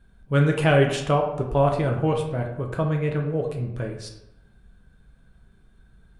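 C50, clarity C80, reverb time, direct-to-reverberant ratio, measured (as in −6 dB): 6.0 dB, 9.5 dB, 0.90 s, 1.5 dB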